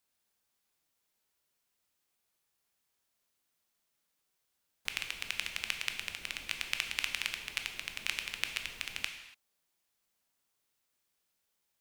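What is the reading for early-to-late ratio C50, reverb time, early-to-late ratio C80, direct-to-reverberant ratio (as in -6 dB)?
8.0 dB, no single decay rate, 9.5 dB, 5.0 dB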